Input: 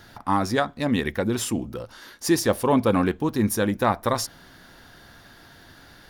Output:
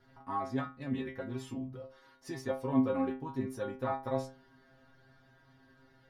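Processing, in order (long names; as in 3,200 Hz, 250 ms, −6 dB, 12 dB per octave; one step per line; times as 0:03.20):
low-pass filter 1,300 Hz 6 dB per octave
stiff-string resonator 130 Hz, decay 0.37 s, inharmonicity 0.002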